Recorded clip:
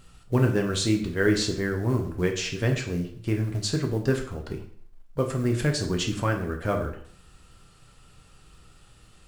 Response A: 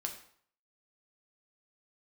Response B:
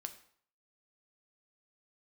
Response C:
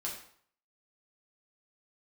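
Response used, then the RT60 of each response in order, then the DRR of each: A; 0.60 s, 0.60 s, 0.60 s; 2.0 dB, 7.0 dB, -4.0 dB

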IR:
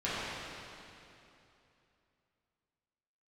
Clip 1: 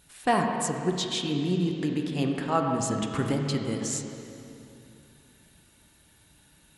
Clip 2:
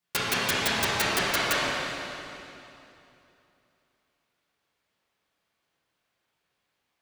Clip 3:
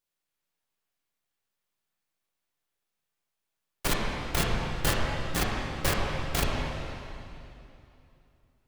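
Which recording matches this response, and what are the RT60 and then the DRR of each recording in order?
2; 2.9 s, 2.9 s, 2.9 s; 1.5 dB, -12.0 dB, -3.5 dB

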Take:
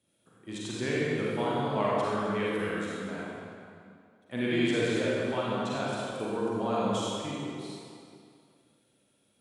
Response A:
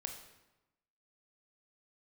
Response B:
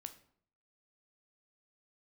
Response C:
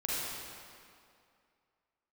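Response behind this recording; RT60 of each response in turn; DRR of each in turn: C; 1.0 s, 0.60 s, 2.4 s; 4.0 dB, 8.0 dB, -7.5 dB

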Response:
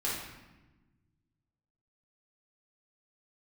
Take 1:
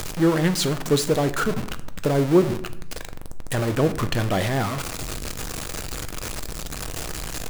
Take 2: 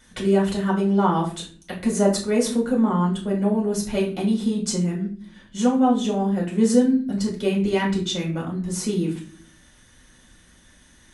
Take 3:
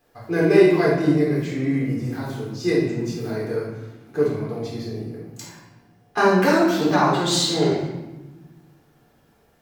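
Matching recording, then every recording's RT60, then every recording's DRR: 3; 0.80 s, 0.45 s, 1.1 s; 10.0 dB, -4.0 dB, -6.5 dB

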